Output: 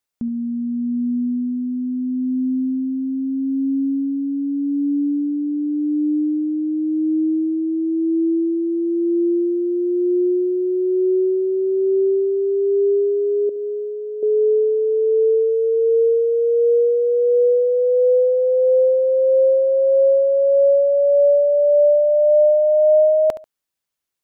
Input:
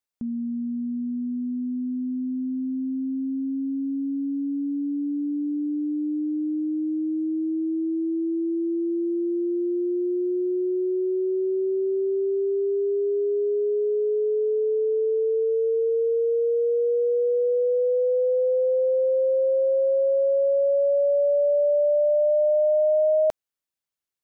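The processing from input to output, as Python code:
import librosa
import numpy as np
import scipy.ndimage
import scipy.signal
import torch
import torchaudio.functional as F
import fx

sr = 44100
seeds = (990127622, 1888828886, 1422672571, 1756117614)

y = fx.peak_eq(x, sr, hz=510.0, db=-13.0, octaves=0.91, at=(13.49, 14.23))
y = fx.echo_feedback(y, sr, ms=70, feedback_pct=22, wet_db=-14.5)
y = y * 10.0 ** (6.0 / 20.0)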